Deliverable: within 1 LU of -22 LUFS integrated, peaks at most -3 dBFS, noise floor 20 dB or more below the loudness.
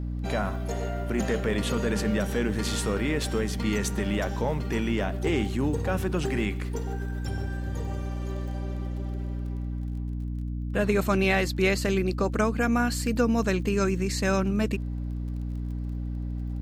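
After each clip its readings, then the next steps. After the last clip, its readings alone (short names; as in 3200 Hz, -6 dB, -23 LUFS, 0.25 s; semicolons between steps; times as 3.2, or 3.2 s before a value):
ticks 24/s; hum 60 Hz; harmonics up to 300 Hz; hum level -29 dBFS; loudness -28.0 LUFS; peak -10.5 dBFS; loudness target -22.0 LUFS
-> de-click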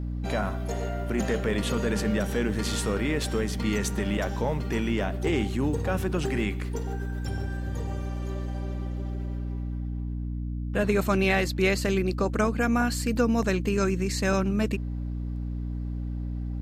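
ticks 0.24/s; hum 60 Hz; harmonics up to 300 Hz; hum level -29 dBFS
-> de-hum 60 Hz, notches 5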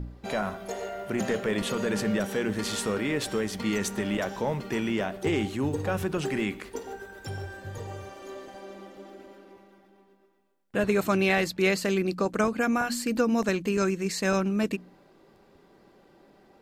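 hum none; loudness -28.0 LUFS; peak -12.0 dBFS; loudness target -22.0 LUFS
-> gain +6 dB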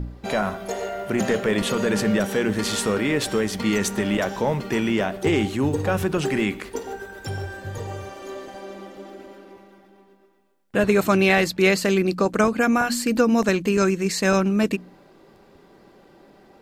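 loudness -22.0 LUFS; peak -6.0 dBFS; noise floor -53 dBFS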